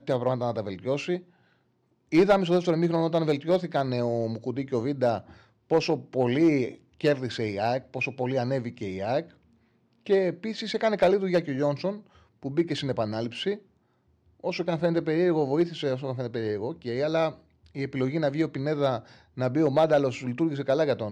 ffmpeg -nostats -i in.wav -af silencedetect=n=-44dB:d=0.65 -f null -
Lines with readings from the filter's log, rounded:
silence_start: 1.22
silence_end: 2.12 | silence_duration: 0.90
silence_start: 9.30
silence_end: 10.06 | silence_duration: 0.76
silence_start: 13.59
silence_end: 14.44 | silence_duration: 0.85